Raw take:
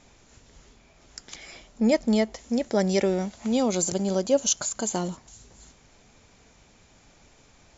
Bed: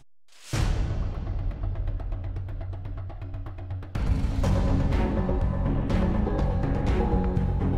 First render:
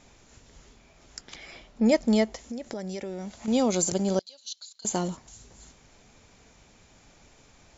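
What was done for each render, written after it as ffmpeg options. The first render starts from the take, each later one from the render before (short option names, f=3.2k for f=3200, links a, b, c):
-filter_complex "[0:a]asettb=1/sr,asplit=3[a][b][c];[a]atrim=end=1.214[d];[b]atrim=start=1.21:end=1.86,asetpts=PTS-STARTPTS,afade=t=in:d=0.004:c=qsin,afade=t=out:st=0.646:d=0.004:c=qsin,lowpass=4.7k[e];[c]atrim=start=1.856[f];[d][e]acrossfade=d=0.004:c1=hsin:c2=qsin[g];[g][f]acrossfade=d=0.004:c1=qsin:c2=hsin,asettb=1/sr,asplit=3[h][i][j];[h]atrim=end=2.434[k];[i]atrim=start=2.43:end=3.48,asetpts=PTS-STARTPTS,afade=t=in:d=0.004:c=qsin,afade=t=out:st=1.046:d=0.004:c=qsin,acompressor=threshold=-32dB:ratio=6:attack=3.2:release=140:knee=1:detection=peak[l];[j]atrim=start=3.476[m];[k][l]acrossfade=d=0.004:c1=hsin:c2=qsin[n];[n][m]acrossfade=d=0.004:c1=qsin:c2=hsin,asettb=1/sr,asplit=3[o][p][q];[o]atrim=end=4.194[r];[p]atrim=start=4.19:end=4.85,asetpts=PTS-STARTPTS,afade=t=in:d=0.004:c=qsin,afade=t=out:st=0.656:d=0.004:c=qsin,bandpass=f=4.1k:t=q:w=8.6[s];[q]atrim=start=4.846[t];[r][s]acrossfade=d=0.004:c1=hsin:c2=qsin[u];[u][t]acrossfade=d=0.004:c1=qsin:c2=hsin"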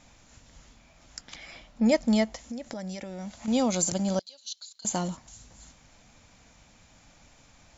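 -af "equalizer=f=400:t=o:w=0.29:g=-14"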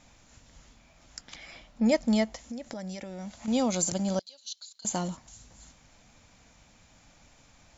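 -af "volume=-1.5dB"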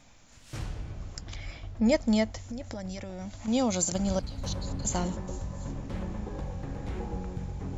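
-filter_complex "[1:a]volume=-11dB[a];[0:a][a]amix=inputs=2:normalize=0"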